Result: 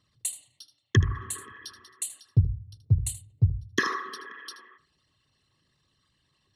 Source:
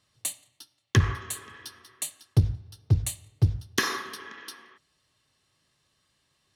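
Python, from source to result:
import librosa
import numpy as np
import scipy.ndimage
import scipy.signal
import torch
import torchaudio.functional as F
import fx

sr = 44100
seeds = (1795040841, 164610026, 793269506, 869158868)

y = fx.envelope_sharpen(x, sr, power=2.0)
y = y + 10.0 ** (-14.0 / 20.0) * np.pad(y, (int(78 * sr / 1000.0), 0))[:len(y)]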